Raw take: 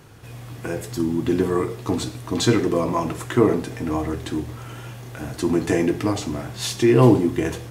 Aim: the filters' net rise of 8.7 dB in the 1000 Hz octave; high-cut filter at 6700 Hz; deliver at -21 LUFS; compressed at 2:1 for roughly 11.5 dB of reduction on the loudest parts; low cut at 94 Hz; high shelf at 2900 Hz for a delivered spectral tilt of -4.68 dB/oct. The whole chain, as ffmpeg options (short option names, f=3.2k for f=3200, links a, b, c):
-af "highpass=94,lowpass=6.7k,equalizer=f=1k:t=o:g=9,highshelf=f=2.9k:g=8,acompressor=threshold=-29dB:ratio=2,volume=7.5dB"